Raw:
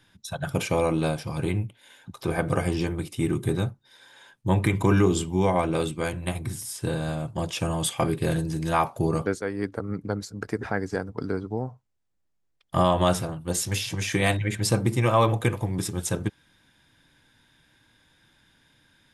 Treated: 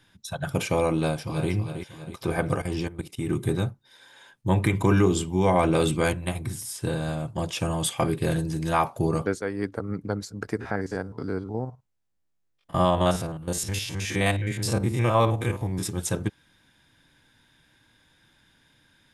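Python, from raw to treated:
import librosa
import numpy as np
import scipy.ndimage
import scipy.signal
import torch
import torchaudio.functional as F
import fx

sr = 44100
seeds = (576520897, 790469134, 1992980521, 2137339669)

y = fx.echo_throw(x, sr, start_s=0.97, length_s=0.54, ms=320, feedback_pct=50, wet_db=-8.5)
y = fx.level_steps(y, sr, step_db=14, at=(2.56, 3.29))
y = fx.env_flatten(y, sr, amount_pct=50, at=(5.45, 6.12), fade=0.02)
y = fx.spec_steps(y, sr, hold_ms=50, at=(10.59, 15.82), fade=0.02)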